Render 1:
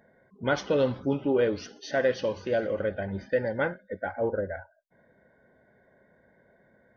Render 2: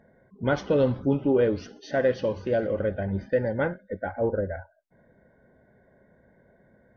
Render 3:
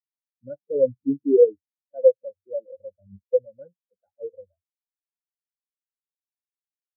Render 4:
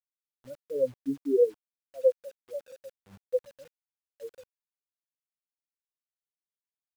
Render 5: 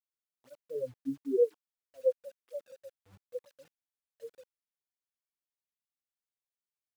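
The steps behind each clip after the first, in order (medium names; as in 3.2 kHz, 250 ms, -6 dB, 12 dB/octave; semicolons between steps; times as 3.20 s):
tilt EQ -2 dB/octave
spectral contrast expander 4:1; trim +4.5 dB
bit crusher 8-bit; trim -7.5 dB
cancelling through-zero flanger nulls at 1 Hz, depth 6.1 ms; trim -3 dB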